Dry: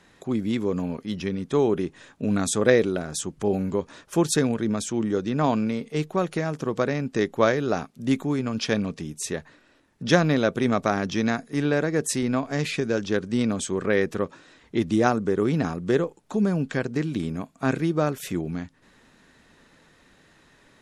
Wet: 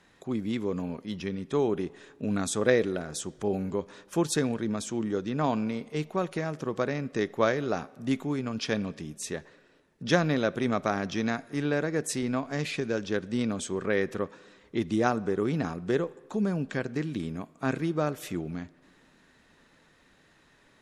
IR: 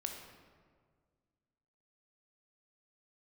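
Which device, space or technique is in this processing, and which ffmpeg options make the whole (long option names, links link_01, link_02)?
filtered reverb send: -filter_complex "[0:a]asplit=2[link_01][link_02];[link_02]highpass=frequency=540:poles=1,lowpass=6100[link_03];[1:a]atrim=start_sample=2205[link_04];[link_03][link_04]afir=irnorm=-1:irlink=0,volume=-12.5dB[link_05];[link_01][link_05]amix=inputs=2:normalize=0,volume=-5.5dB"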